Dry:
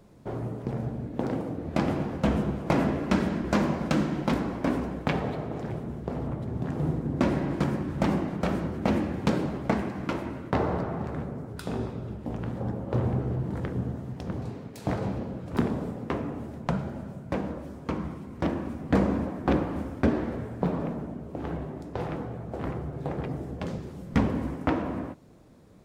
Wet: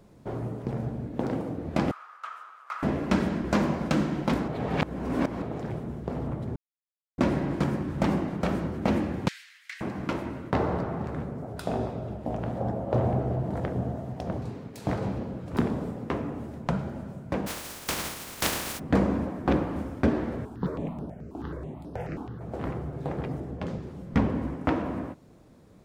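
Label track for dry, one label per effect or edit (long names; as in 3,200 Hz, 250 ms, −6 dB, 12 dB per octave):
1.910000	2.830000	four-pole ladder high-pass 1,200 Hz, resonance 85%
4.480000	5.420000	reverse
6.560000	7.180000	silence
9.280000	9.810000	elliptic high-pass filter 1,800 Hz, stop band 70 dB
11.420000	14.380000	parametric band 670 Hz +11.5 dB 0.56 octaves
17.460000	18.780000	compressing power law on the bin magnitudes exponent 0.23
20.450000	22.410000	step-sequenced phaser 9.3 Hz 530–7,200 Hz
23.400000	24.650000	high-shelf EQ 4,600 Hz −8 dB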